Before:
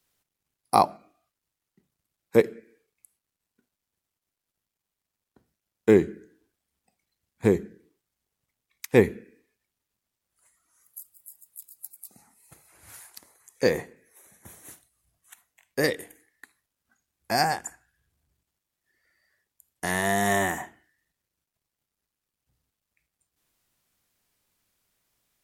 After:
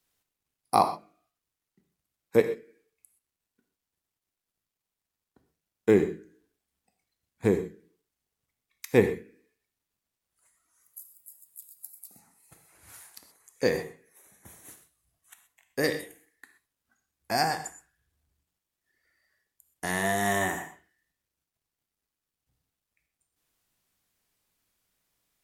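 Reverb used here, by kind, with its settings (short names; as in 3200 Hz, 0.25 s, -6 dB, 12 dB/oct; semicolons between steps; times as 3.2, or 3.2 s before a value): non-linear reverb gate 0.15 s flat, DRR 8 dB; gain -3 dB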